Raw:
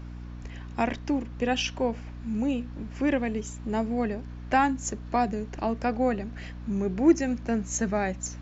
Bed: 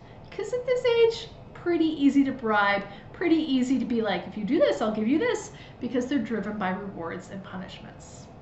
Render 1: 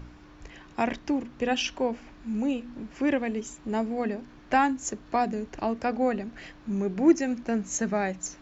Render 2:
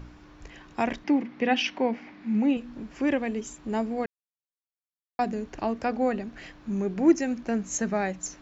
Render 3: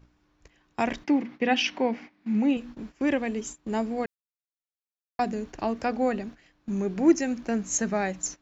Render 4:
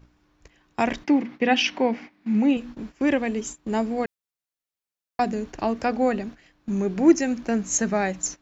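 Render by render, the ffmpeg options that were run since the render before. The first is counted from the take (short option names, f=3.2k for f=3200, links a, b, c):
-af "bandreject=f=60:t=h:w=4,bandreject=f=120:t=h:w=4,bandreject=f=180:t=h:w=4,bandreject=f=240:t=h:w=4"
-filter_complex "[0:a]asettb=1/sr,asplit=3[a][b][c];[a]atrim=end=1.044[d];[b]atrim=start=1.04:end=2.57,asetpts=PTS-STARTPTS,afade=t=in:d=0.004:c=qsin,afade=t=out:st=1.526:d=0.004:c=qsin,highpass=170,equalizer=f=200:t=q:w=4:g=8,equalizer=f=290:t=q:w=4:g=4,equalizer=f=800:t=q:w=4:g=4,equalizer=f=2.1k:t=q:w=4:g=10,lowpass=f=5.3k:w=0.5412,lowpass=f=5.3k:w=1.3066[e];[c]atrim=start=2.566[f];[d][e]acrossfade=d=0.004:c1=hsin:c2=qsin[g];[g][f]acrossfade=d=0.004:c1=qsin:c2=hsin,asplit=3[h][i][j];[h]atrim=end=4.06,asetpts=PTS-STARTPTS,afade=t=out:st=4.056:d=0.004:c=hsin[k];[i]atrim=start=4.06:end=5.19,asetpts=PTS-STARTPTS,volume=0[l];[j]atrim=start=5.19,asetpts=PTS-STARTPTS,afade=t=in:d=0.004:c=hsin[m];[k][l][m]concat=n=3:v=0:a=1"
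-af "agate=range=-17dB:threshold=-40dB:ratio=16:detection=peak,highshelf=f=4.6k:g=5.5"
-af "volume=3.5dB"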